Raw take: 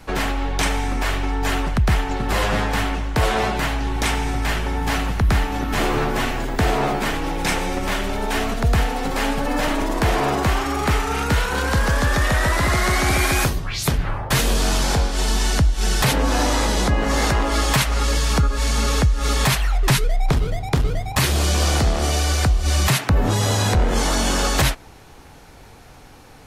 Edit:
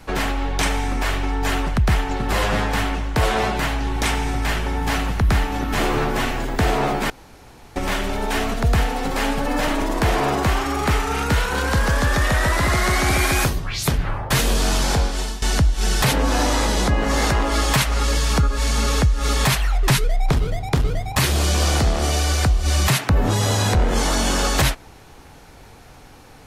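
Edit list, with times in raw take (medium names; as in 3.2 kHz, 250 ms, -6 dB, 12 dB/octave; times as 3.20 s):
7.10–7.76 s: room tone
15.08–15.42 s: fade out, to -17 dB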